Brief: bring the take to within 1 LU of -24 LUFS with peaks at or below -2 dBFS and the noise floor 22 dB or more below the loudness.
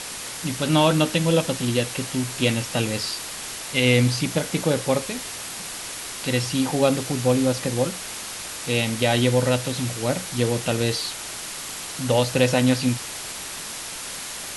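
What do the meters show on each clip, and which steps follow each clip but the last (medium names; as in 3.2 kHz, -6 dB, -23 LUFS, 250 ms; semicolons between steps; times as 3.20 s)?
noise floor -34 dBFS; noise floor target -46 dBFS; loudness -23.5 LUFS; peak level -4.0 dBFS; loudness target -24.0 LUFS
-> noise reduction 12 dB, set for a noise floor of -34 dBFS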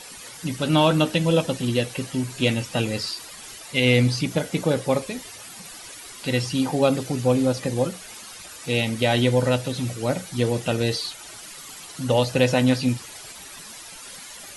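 noise floor -41 dBFS; noise floor target -45 dBFS
-> noise reduction 6 dB, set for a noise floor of -41 dBFS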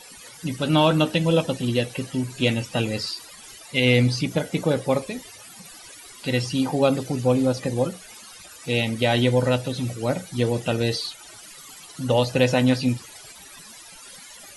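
noise floor -45 dBFS; loudness -23.0 LUFS; peak level -4.0 dBFS; loudness target -24.0 LUFS
-> trim -1 dB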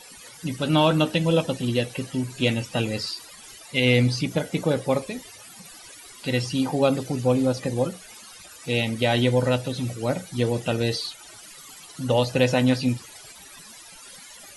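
loudness -24.0 LUFS; peak level -5.0 dBFS; noise floor -46 dBFS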